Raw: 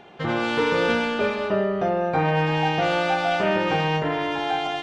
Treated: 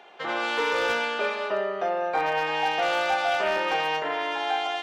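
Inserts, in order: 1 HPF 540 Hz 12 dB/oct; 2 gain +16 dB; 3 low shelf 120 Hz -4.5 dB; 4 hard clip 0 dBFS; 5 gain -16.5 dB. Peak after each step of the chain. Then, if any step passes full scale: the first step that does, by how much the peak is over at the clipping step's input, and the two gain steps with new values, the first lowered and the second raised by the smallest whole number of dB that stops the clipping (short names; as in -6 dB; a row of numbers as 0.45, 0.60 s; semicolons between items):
-10.0, +6.0, +6.0, 0.0, -16.5 dBFS; step 2, 6.0 dB; step 2 +10 dB, step 5 -10.5 dB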